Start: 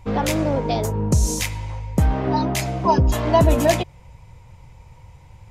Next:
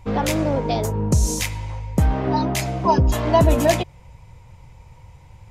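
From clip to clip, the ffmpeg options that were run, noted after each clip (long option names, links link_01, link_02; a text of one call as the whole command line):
ffmpeg -i in.wav -af anull out.wav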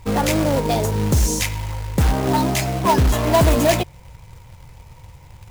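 ffmpeg -i in.wav -filter_complex "[0:a]asplit=2[link_01][link_02];[link_02]aeval=exprs='(mod(3.98*val(0)+1,2)-1)/3.98':channel_layout=same,volume=-10dB[link_03];[link_01][link_03]amix=inputs=2:normalize=0,acrusher=bits=3:mode=log:mix=0:aa=0.000001" out.wav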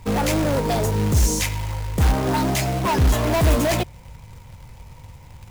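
ffmpeg -i in.wav -filter_complex "[0:a]acrossover=split=100[link_01][link_02];[link_02]asoftclip=type=hard:threshold=-18dB[link_03];[link_01][link_03]amix=inputs=2:normalize=0,aeval=exprs='val(0)+0.00355*(sin(2*PI*50*n/s)+sin(2*PI*2*50*n/s)/2+sin(2*PI*3*50*n/s)/3+sin(2*PI*4*50*n/s)/4+sin(2*PI*5*50*n/s)/5)':channel_layout=same" out.wav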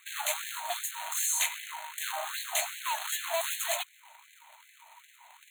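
ffmpeg -i in.wav -filter_complex "[0:a]acrossover=split=380|3000[link_01][link_02][link_03];[link_02]acompressor=threshold=-31dB:ratio=3[link_04];[link_01][link_04][link_03]amix=inputs=3:normalize=0,asuperstop=centerf=5200:order=20:qfactor=2.9,afftfilt=real='re*gte(b*sr/1024,560*pow(1600/560,0.5+0.5*sin(2*PI*2.6*pts/sr)))':imag='im*gte(b*sr/1024,560*pow(1600/560,0.5+0.5*sin(2*PI*2.6*pts/sr)))':win_size=1024:overlap=0.75,volume=-1.5dB" out.wav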